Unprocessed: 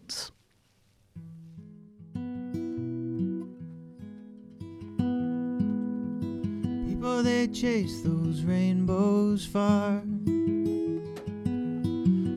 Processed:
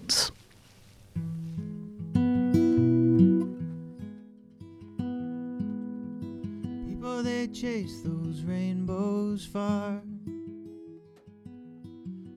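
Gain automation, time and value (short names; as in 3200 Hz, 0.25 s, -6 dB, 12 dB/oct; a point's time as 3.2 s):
3.16 s +11 dB
4.03 s +3.5 dB
4.33 s -5 dB
9.87 s -5 dB
10.63 s -16.5 dB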